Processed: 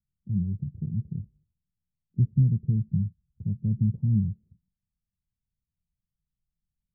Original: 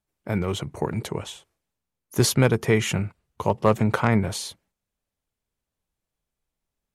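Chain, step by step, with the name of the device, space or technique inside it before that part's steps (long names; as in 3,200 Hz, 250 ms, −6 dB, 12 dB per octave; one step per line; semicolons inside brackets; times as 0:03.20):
the neighbour's flat through the wall (low-pass filter 170 Hz 24 dB per octave; parametric band 190 Hz +5 dB 0.77 octaves)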